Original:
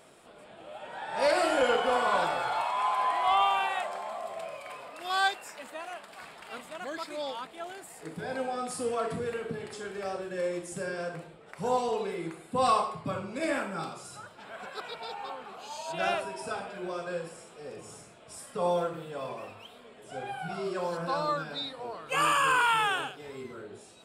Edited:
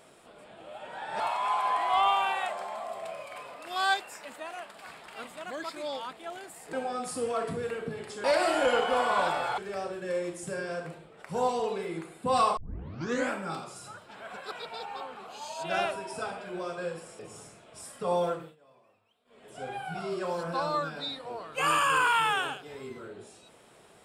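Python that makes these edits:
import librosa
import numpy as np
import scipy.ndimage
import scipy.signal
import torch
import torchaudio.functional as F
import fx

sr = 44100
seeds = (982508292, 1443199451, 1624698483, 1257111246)

y = fx.edit(x, sr, fx.move(start_s=1.2, length_s=1.34, to_s=9.87),
    fx.cut(start_s=8.07, length_s=0.29),
    fx.tape_start(start_s=12.86, length_s=0.74),
    fx.cut(start_s=17.48, length_s=0.25),
    fx.fade_down_up(start_s=18.88, length_s=1.13, db=-23.5, fade_s=0.22), tone=tone)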